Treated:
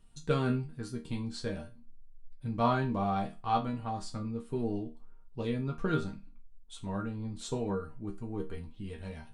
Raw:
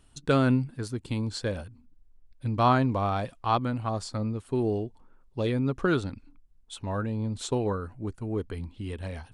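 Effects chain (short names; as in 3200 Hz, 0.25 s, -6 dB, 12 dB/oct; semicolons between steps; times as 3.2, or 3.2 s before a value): low shelf 190 Hz +8.5 dB; resonator bank D#3 major, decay 0.26 s; gain +8 dB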